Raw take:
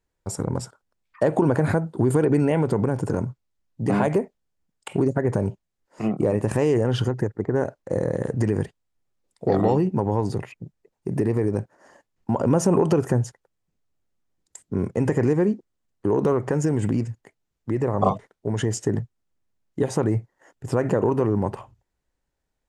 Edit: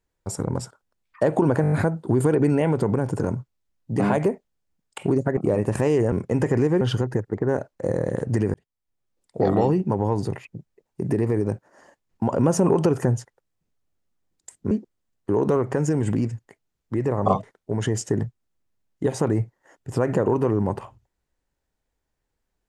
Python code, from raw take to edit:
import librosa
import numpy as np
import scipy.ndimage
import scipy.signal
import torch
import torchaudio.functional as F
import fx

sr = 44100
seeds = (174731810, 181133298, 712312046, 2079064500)

y = fx.edit(x, sr, fx.stutter(start_s=1.62, slice_s=0.02, count=6),
    fx.cut(start_s=5.27, length_s=0.86),
    fx.fade_in_span(start_s=8.61, length_s=0.98, curve='qsin'),
    fx.move(start_s=14.78, length_s=0.69, to_s=6.88), tone=tone)